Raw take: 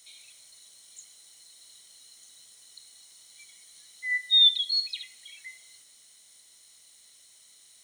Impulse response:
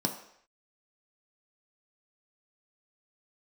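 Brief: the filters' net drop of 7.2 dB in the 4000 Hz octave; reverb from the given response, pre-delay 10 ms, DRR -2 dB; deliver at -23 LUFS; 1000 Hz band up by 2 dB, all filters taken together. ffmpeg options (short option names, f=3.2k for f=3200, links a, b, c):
-filter_complex "[0:a]equalizer=f=1k:t=o:g=3,equalizer=f=4k:t=o:g=-8,asplit=2[a][b];[1:a]atrim=start_sample=2205,adelay=10[c];[b][c]afir=irnorm=-1:irlink=0,volume=-4dB[d];[a][d]amix=inputs=2:normalize=0,volume=1.5dB"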